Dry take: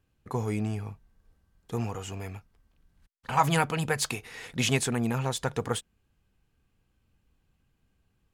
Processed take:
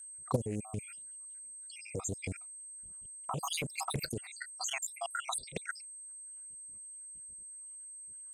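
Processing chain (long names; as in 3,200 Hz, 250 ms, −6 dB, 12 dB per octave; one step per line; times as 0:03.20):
time-frequency cells dropped at random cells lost 82%
0:00.89–0:01.76: meter weighting curve ITU-R 468
noise gate −59 dBFS, range −7 dB
low-pass that shuts in the quiet parts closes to 3,000 Hz, open at −35 dBFS
dynamic equaliser 2,000 Hz, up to −7 dB, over −53 dBFS, Q 1.6
notch comb filter 860 Hz
0:03.54–0:04.05: leveller curve on the samples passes 1
downward compressor 4 to 1, threshold −41 dBFS, peak gain reduction 12 dB
steady tone 8,300 Hz −58 dBFS
output level in coarse steps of 13 dB
highs frequency-modulated by the lows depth 0.8 ms
level +16.5 dB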